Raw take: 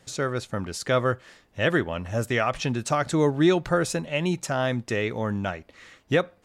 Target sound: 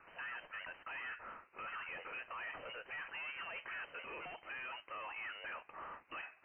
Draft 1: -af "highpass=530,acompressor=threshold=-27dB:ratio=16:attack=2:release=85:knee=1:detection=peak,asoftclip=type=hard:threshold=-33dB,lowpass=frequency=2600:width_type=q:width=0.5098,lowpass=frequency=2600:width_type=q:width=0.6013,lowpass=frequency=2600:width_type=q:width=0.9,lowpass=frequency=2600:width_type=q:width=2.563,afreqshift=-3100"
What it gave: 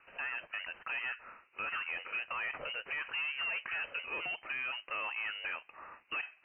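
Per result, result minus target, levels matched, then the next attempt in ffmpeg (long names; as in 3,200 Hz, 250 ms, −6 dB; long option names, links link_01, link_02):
1,000 Hz band −5.0 dB; hard clipping: distortion −6 dB
-af "highpass=530,tiltshelf=frequency=1100:gain=-8.5,acompressor=threshold=-27dB:ratio=16:attack=2:release=85:knee=1:detection=peak,asoftclip=type=hard:threshold=-33dB,lowpass=frequency=2600:width_type=q:width=0.5098,lowpass=frequency=2600:width_type=q:width=0.6013,lowpass=frequency=2600:width_type=q:width=0.9,lowpass=frequency=2600:width_type=q:width=2.563,afreqshift=-3100"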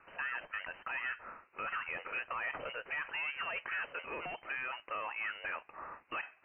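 hard clipping: distortion −5 dB
-af "highpass=530,tiltshelf=frequency=1100:gain=-8.5,acompressor=threshold=-27dB:ratio=16:attack=2:release=85:knee=1:detection=peak,asoftclip=type=hard:threshold=-42.5dB,lowpass=frequency=2600:width_type=q:width=0.5098,lowpass=frequency=2600:width_type=q:width=0.6013,lowpass=frequency=2600:width_type=q:width=0.9,lowpass=frequency=2600:width_type=q:width=2.563,afreqshift=-3100"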